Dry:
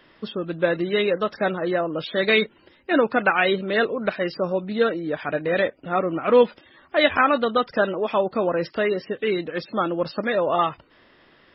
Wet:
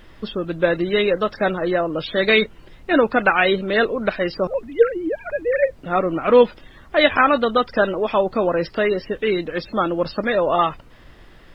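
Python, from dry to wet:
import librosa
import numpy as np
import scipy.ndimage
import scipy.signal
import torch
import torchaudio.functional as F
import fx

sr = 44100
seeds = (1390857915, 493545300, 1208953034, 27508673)

y = fx.sine_speech(x, sr, at=(4.47, 5.76))
y = fx.dmg_noise_colour(y, sr, seeds[0], colour='brown', level_db=-47.0)
y = y * librosa.db_to_amplitude(3.0)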